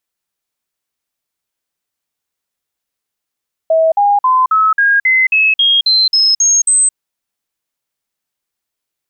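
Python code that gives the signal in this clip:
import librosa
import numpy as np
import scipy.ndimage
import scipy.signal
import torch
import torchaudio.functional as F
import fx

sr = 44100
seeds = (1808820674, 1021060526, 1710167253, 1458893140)

y = fx.stepped_sweep(sr, from_hz=646.0, direction='up', per_octave=3, tones=12, dwell_s=0.22, gap_s=0.05, level_db=-7.5)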